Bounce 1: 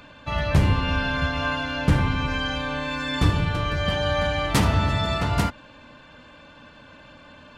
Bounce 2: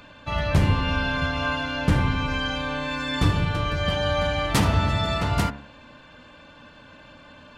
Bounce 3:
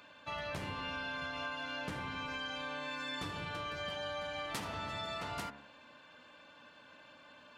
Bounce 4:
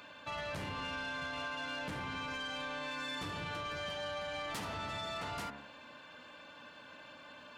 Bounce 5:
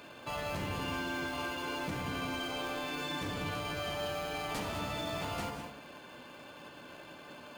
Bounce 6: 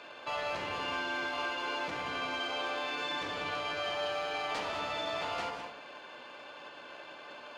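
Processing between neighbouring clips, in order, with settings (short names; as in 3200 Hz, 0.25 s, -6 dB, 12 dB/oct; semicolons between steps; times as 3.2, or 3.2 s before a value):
de-hum 70.52 Hz, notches 39
HPF 460 Hz 6 dB/oct; compressor, threshold -29 dBFS, peak gain reduction 9 dB; gain -8 dB
in parallel at +2 dB: limiter -36.5 dBFS, peak gain reduction 10 dB; on the sum: soft clip -31.5 dBFS, distortion -16 dB; gain -2.5 dB
in parallel at -3 dB: sample-and-hold 23×; on the sum: non-linear reverb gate 0.23 s rising, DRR 6 dB
three-band isolator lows -16 dB, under 390 Hz, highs -23 dB, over 6100 Hz; gain +3.5 dB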